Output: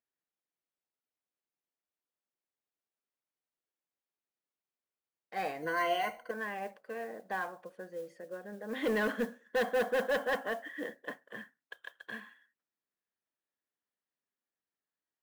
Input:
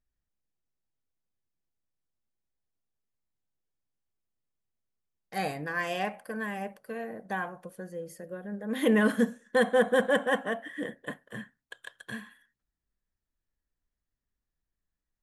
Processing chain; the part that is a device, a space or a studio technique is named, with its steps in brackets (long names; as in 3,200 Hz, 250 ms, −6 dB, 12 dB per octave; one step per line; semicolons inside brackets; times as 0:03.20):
carbon microphone (band-pass filter 330–3,300 Hz; soft clipping −23 dBFS, distortion −12 dB; noise that follows the level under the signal 24 dB)
0:05.62–0:06.31: EQ curve with evenly spaced ripples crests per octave 1.9, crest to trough 17 dB
level −1.5 dB